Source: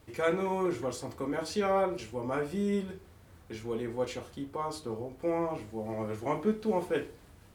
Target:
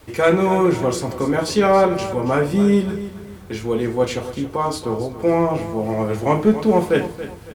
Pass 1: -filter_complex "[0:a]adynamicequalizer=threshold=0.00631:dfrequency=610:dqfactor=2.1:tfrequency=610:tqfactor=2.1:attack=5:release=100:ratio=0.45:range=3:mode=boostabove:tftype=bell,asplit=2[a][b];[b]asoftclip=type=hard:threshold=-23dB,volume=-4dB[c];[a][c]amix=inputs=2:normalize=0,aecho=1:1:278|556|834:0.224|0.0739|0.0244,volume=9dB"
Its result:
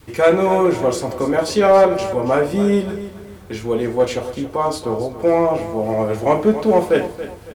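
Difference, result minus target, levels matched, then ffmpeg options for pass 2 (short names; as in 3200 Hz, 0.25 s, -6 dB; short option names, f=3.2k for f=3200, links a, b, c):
125 Hz band -4.5 dB
-filter_complex "[0:a]adynamicequalizer=threshold=0.00631:dfrequency=150:dqfactor=2.1:tfrequency=150:tqfactor=2.1:attack=5:release=100:ratio=0.45:range=3:mode=boostabove:tftype=bell,asplit=2[a][b];[b]asoftclip=type=hard:threshold=-23dB,volume=-4dB[c];[a][c]amix=inputs=2:normalize=0,aecho=1:1:278|556|834:0.224|0.0739|0.0244,volume=9dB"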